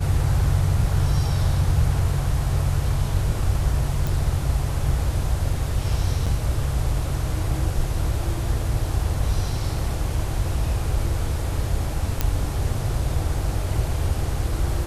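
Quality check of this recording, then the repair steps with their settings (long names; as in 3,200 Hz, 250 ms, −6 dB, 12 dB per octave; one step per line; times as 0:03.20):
0:04.07: click
0:06.26–0:06.27: drop-out 6 ms
0:12.21: click −6 dBFS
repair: click removal
repair the gap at 0:06.26, 6 ms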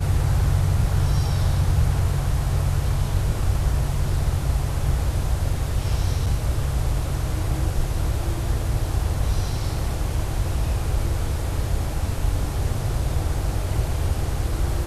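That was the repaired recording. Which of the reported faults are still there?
none of them is left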